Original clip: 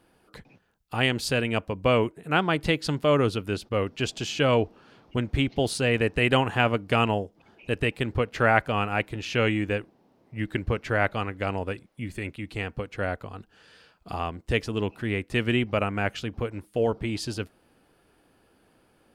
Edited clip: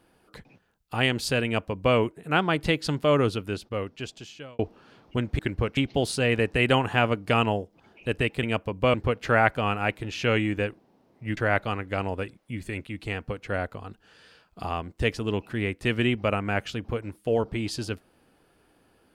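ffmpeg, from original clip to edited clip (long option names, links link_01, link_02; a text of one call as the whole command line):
ffmpeg -i in.wav -filter_complex "[0:a]asplit=7[link_01][link_02][link_03][link_04][link_05][link_06][link_07];[link_01]atrim=end=4.59,asetpts=PTS-STARTPTS,afade=type=out:start_time=3.24:duration=1.35[link_08];[link_02]atrim=start=4.59:end=5.392,asetpts=PTS-STARTPTS,afade=type=in:duration=0.004:curve=hsin[link_09];[link_03]atrim=start=10.478:end=10.862[link_10];[link_04]atrim=start=5.388:end=8.052[link_11];[link_05]atrim=start=1.448:end=1.962[link_12];[link_06]atrim=start=8.048:end=10.482[link_13];[link_07]atrim=start=10.858[link_14];[link_08][link_09]concat=n=2:v=0:a=1[link_15];[link_15][link_10]acrossfade=duration=0.004:curve1=hsin:curve2=hsin[link_16];[link_16][link_11]acrossfade=duration=0.004:curve1=hsin:curve2=hsin[link_17];[link_17][link_12]acrossfade=duration=0.004:curve1=hsin:curve2=hsin[link_18];[link_18][link_13]acrossfade=duration=0.004:curve1=hsin:curve2=hsin[link_19];[link_19][link_14]acrossfade=duration=0.004:curve1=hsin:curve2=hsin" out.wav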